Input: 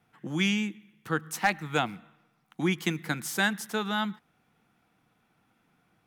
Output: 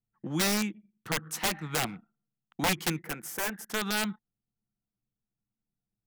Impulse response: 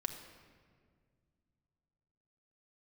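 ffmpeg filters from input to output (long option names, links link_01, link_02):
-filter_complex "[0:a]aeval=exprs='(mod(10.6*val(0)+1,2)-1)/10.6':channel_layout=same,asettb=1/sr,asplit=3[link_01][link_02][link_03];[link_01]atrim=end=2.994[link_04];[link_02]atrim=start=2.99:end=3.7,asetpts=PTS-STARTPTS,afade=type=in:duration=0.004:curve=qsin,afade=type=out:start_time=0.706:duration=0.004:curve=qsin,equalizer=frequency=125:width_type=o:width=1:gain=-9,equalizer=frequency=250:width_type=o:width=1:gain=-5,equalizer=frequency=500:width_type=o:width=1:gain=3,equalizer=frequency=1000:width_type=o:width=1:gain=-4,equalizer=frequency=4000:width_type=o:width=1:gain=-12,equalizer=frequency=8000:width_type=o:width=1:gain=-4[link_05];[link_03]atrim=start=3.696[link_06];[link_04][link_05]acrossfade=duration=0.004:curve1=hsin:curve2=qsin[link_07];[link_07][link_06]acrossfade=duration=0.004:curve1=qsin:curve2=hsin,anlmdn=0.0158"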